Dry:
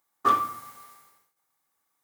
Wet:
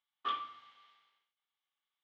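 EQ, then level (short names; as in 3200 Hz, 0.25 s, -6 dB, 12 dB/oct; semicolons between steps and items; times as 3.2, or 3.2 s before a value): band-pass 3200 Hz, Q 6.3; air absorption 160 m; tilt -2.5 dB/oct; +10.5 dB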